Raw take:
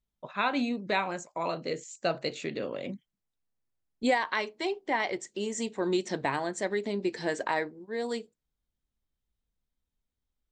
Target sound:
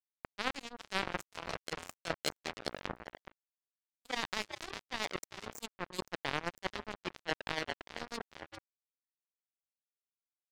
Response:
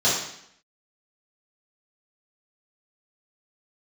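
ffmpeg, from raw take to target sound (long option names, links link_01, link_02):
-filter_complex "[0:a]bandreject=frequency=50:width_type=h:width=6,bandreject=frequency=100:width_type=h:width=6,bandreject=frequency=150:width_type=h:width=6,bandreject=frequency=200:width_type=h:width=6,bandreject=frequency=250:width_type=h:width=6,bandreject=frequency=300:width_type=h:width=6,bandreject=frequency=350:width_type=h:width=6,bandreject=frequency=400:width_type=h:width=6,bandreject=frequency=450:width_type=h:width=6,asplit=5[link_01][link_02][link_03][link_04][link_05];[link_02]adelay=401,afreqshift=89,volume=-8dB[link_06];[link_03]adelay=802,afreqshift=178,volume=-17.4dB[link_07];[link_04]adelay=1203,afreqshift=267,volume=-26.7dB[link_08];[link_05]adelay=1604,afreqshift=356,volume=-36.1dB[link_09];[link_01][link_06][link_07][link_08][link_09]amix=inputs=5:normalize=0,afftfilt=real='re*gte(hypot(re,im),0.0158)':imag='im*gte(hypot(re,im),0.0158)':win_size=1024:overlap=0.75,highshelf=frequency=2400:gain=2.5,asplit=2[link_10][link_11];[link_11]asoftclip=type=tanh:threshold=-27.5dB,volume=-3dB[link_12];[link_10][link_12]amix=inputs=2:normalize=0,bandreject=frequency=3200:width=5.4,areverse,acompressor=threshold=-37dB:ratio=8,areverse,acrusher=bits=4:mix=0:aa=0.5,volume=10dB"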